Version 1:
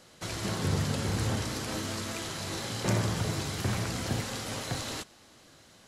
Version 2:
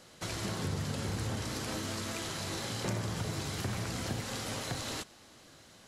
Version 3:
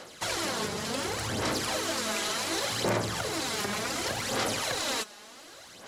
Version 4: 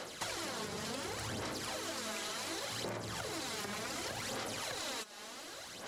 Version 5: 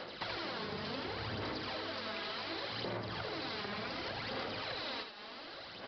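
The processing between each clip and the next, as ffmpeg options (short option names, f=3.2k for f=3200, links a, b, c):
-af "acompressor=threshold=-34dB:ratio=2.5"
-af "aeval=exprs='0.0944*sin(PI/2*1.58*val(0)/0.0944)':c=same,aphaser=in_gain=1:out_gain=1:delay=4.9:decay=0.55:speed=0.68:type=sinusoidal,bass=f=250:g=-14,treble=f=4k:g=-1"
-af "acompressor=threshold=-38dB:ratio=12,volume=1dB"
-filter_complex "[0:a]asplit=2[a][b];[b]aecho=0:1:80:0.447[c];[a][c]amix=inputs=2:normalize=0,aresample=11025,aresample=44100"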